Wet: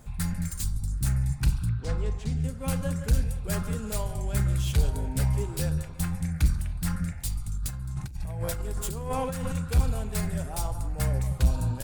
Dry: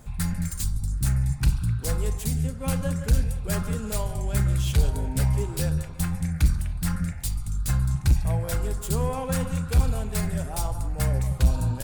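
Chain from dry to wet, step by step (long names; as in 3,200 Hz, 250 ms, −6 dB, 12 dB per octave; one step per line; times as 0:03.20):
0:01.69–0:02.44: high-frequency loss of the air 130 metres
0:07.49–0:09.55: compressor whose output falls as the input rises −29 dBFS, ratio −1
level −2.5 dB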